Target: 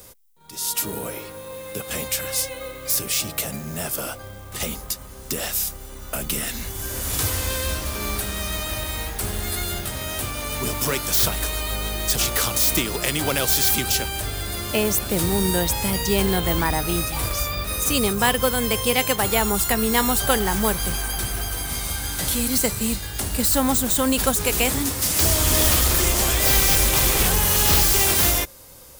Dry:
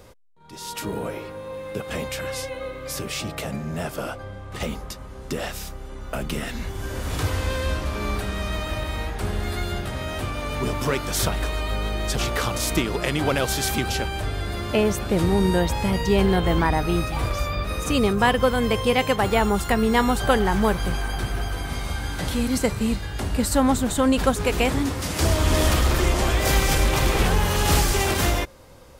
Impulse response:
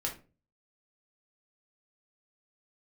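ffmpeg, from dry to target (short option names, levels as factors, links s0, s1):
-filter_complex "[0:a]acrossover=split=280|5800[s0][s1][s2];[s2]aeval=exprs='0.0251*(abs(mod(val(0)/0.0251+3,4)-2)-1)':c=same[s3];[s0][s1][s3]amix=inputs=3:normalize=0,highshelf=f=5700:g=4.5,acrusher=bits=7:mode=log:mix=0:aa=0.000001,aemphasis=mode=production:type=75kf,volume=0.75"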